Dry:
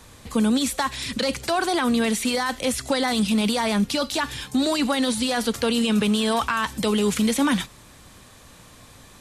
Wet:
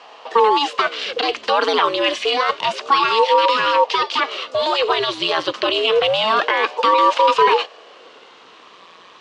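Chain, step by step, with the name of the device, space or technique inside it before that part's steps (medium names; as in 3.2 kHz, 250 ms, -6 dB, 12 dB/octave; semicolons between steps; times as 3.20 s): 1.61–2.23 s: comb 2.2 ms, depth 69%; voice changer toy (ring modulator with a swept carrier 420 Hz, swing 80%, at 0.28 Hz; cabinet simulation 430–4900 Hz, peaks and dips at 470 Hz +7 dB, 1.1 kHz +10 dB, 2.9 kHz +8 dB); trim +6 dB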